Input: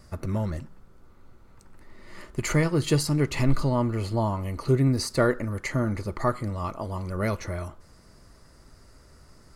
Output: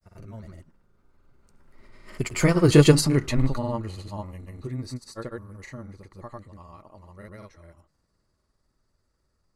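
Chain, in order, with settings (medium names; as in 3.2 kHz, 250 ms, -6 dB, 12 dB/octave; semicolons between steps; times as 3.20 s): Doppler pass-by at 2.77 s, 14 m/s, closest 3.5 m; granulator, pitch spread up and down by 0 st; trim +8.5 dB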